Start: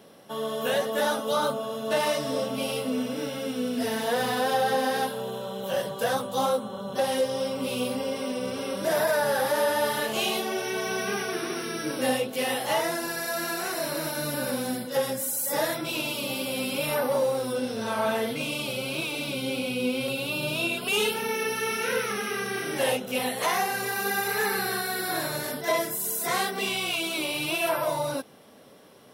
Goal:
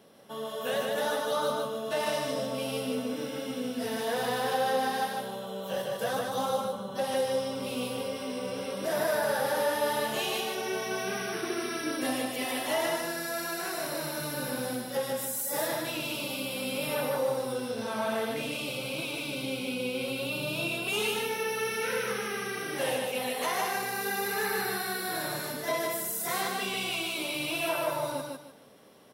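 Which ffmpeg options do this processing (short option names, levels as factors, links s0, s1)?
-filter_complex "[0:a]asettb=1/sr,asplit=3[s0][s1][s2];[s0]atrim=end=11.434[s3];[s1]atrim=start=11.43:end=12.86,asetpts=PTS-STARTPTS,afade=t=in:d=0.004:c=qsin,afade=t=out:st=1.426:d=0.004:c=qsin,aecho=1:1:3:0.6,atrim=end_sample=63063[s4];[s2]atrim=start=12.856[s5];[s3][s4]acrossfade=d=0.004:c1=hsin:c2=qsin[s6];[s6][s5]acrossfade=d=0.004:c1=qsin:c2=hsin,aecho=1:1:151|302|453|604:0.708|0.205|0.0595|0.0173,volume=0.531"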